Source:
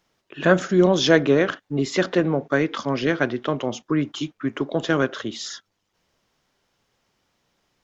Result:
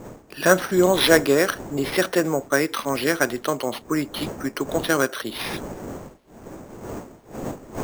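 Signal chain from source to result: wind noise 330 Hz -34 dBFS; bass shelf 260 Hz -11.5 dB; sample-and-hold 6×; trim +3 dB

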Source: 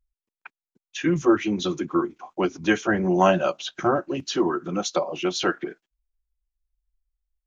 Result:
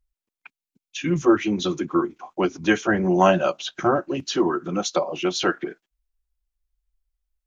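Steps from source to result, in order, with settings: time-frequency box 0.41–1.11 s, 290–2100 Hz -8 dB; trim +1.5 dB

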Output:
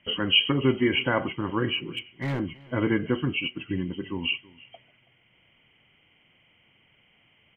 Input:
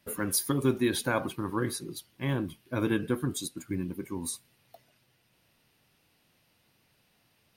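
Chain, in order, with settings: knee-point frequency compression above 1.9 kHz 4:1; 1.77–2.40 s: overload inside the chain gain 28 dB; echo from a far wall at 56 m, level -22 dB; trim +3.5 dB

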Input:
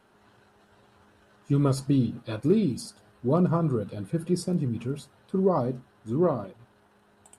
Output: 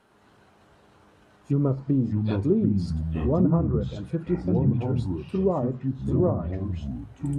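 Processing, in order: low-pass that closes with the level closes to 870 Hz, closed at -20 dBFS; ever faster or slower copies 107 ms, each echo -5 st, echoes 2

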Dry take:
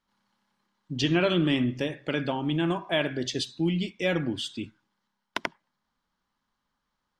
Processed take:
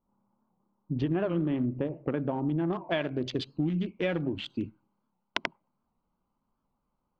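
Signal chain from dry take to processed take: local Wiener filter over 25 samples; low-pass 1.2 kHz 12 dB/octave, from 2.73 s 2.8 kHz, from 4.50 s 5.5 kHz; compression 4:1, threshold -31 dBFS, peak gain reduction 9.5 dB; warped record 78 rpm, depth 160 cents; trim +4.5 dB

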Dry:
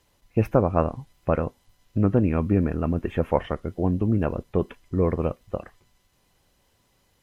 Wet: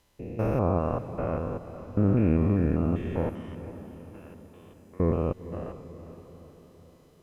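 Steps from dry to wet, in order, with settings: spectrogram pixelated in time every 200 ms; 3.29–5.00 s: differentiator; echo that smears into a reverb 475 ms, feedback 51%, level -13 dB

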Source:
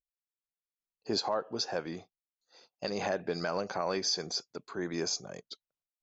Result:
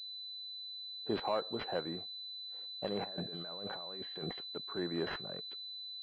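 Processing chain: 3.04–4.38 s: compressor with a negative ratio -44 dBFS, ratio -1; class-D stage that switches slowly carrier 4 kHz; trim -2 dB

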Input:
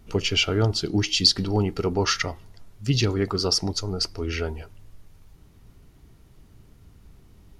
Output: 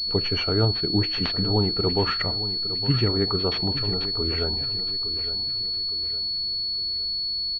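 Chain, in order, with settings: feedback delay 861 ms, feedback 41%, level -12.5 dB; class-D stage that switches slowly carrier 4.4 kHz

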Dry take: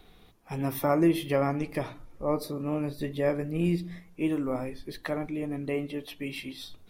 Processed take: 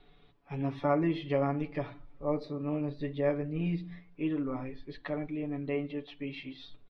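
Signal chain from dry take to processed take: low-pass 4 kHz 24 dB/octave; comb 7 ms, depth 78%; trim -7 dB

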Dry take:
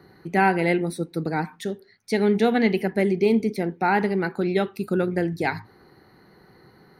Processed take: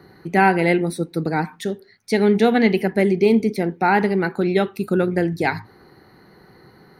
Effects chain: 4.22–5.06 s: band-stop 4.8 kHz, Q 14; trim +4 dB

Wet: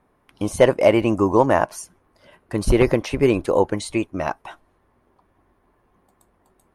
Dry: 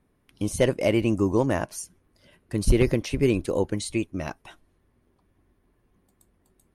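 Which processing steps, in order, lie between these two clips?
peaking EQ 920 Hz +13 dB 2.1 oct

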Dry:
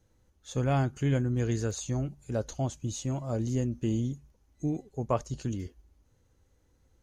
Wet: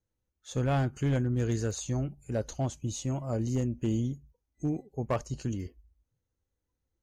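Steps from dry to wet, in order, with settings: spectral noise reduction 17 dB; hard clipper -22 dBFS, distortion -19 dB

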